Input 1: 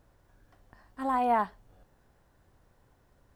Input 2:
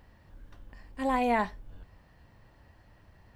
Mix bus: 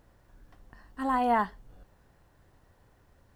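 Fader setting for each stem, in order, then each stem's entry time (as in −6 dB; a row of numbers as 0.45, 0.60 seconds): +1.5, −10.5 decibels; 0.00, 0.00 seconds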